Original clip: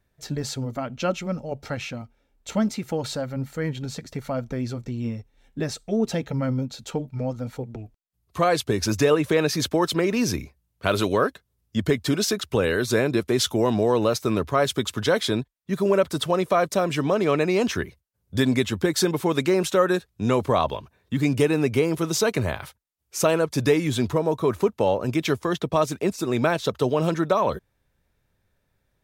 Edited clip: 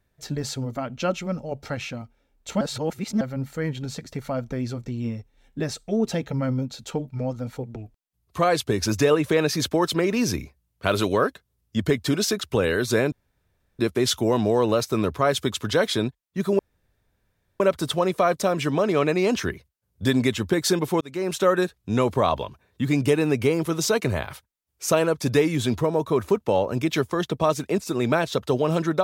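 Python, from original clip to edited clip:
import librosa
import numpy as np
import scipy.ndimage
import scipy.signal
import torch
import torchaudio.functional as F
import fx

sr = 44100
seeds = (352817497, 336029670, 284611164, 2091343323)

y = fx.edit(x, sr, fx.reverse_span(start_s=2.61, length_s=0.6),
    fx.insert_room_tone(at_s=13.12, length_s=0.67),
    fx.insert_room_tone(at_s=15.92, length_s=1.01),
    fx.fade_in_span(start_s=19.33, length_s=0.43), tone=tone)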